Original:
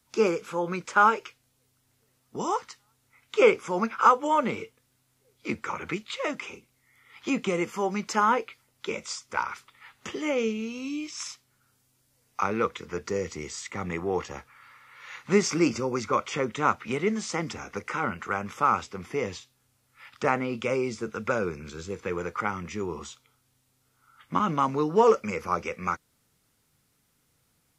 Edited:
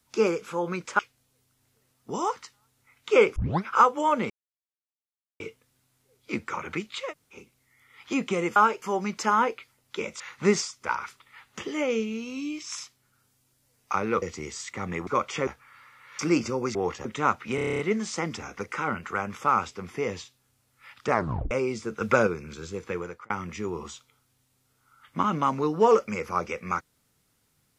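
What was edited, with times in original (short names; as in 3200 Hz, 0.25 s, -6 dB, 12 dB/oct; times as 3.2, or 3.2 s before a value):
0.99–1.25 move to 7.72
3.62 tape start 0.28 s
4.56 insert silence 1.10 s
6.25–6.51 room tone, crossfade 0.10 s
12.7–13.2 cut
14.05–14.35 swap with 16.05–16.45
15.07–15.49 move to 9.1
16.95 stutter 0.03 s, 9 plays
20.27 tape stop 0.40 s
21.17–21.43 gain +6 dB
22.07–22.46 fade out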